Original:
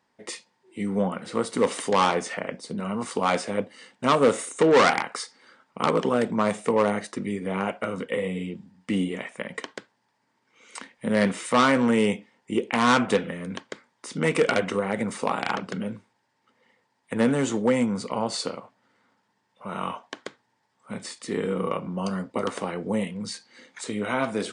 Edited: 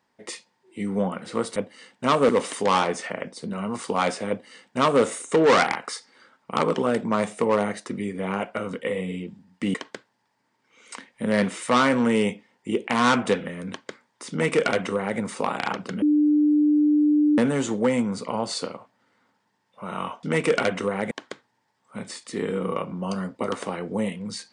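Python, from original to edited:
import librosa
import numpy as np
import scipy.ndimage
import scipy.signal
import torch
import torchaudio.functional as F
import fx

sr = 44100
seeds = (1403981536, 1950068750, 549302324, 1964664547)

y = fx.edit(x, sr, fx.duplicate(start_s=3.56, length_s=0.73, to_s=1.56),
    fx.cut(start_s=9.01, length_s=0.56),
    fx.duplicate(start_s=14.14, length_s=0.88, to_s=20.06),
    fx.bleep(start_s=15.85, length_s=1.36, hz=298.0, db=-15.5), tone=tone)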